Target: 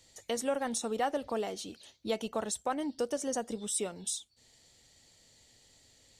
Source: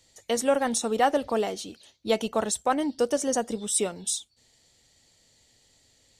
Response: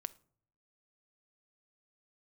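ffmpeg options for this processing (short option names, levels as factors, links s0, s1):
-af "acompressor=threshold=0.00631:ratio=1.5"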